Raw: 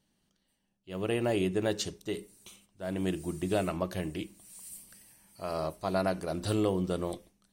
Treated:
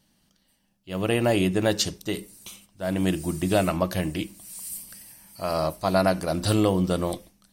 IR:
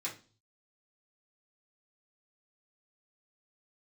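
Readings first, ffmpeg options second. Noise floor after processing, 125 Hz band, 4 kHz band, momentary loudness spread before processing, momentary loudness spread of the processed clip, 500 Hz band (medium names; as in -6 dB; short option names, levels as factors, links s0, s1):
-68 dBFS, +8.5 dB, +9.5 dB, 16 LU, 15 LU, +6.5 dB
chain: -af "equalizer=f=400:t=o:w=0.33:g=-7,equalizer=f=5000:t=o:w=0.33:g=4,equalizer=f=12500:t=o:w=0.33:g=7,volume=2.66"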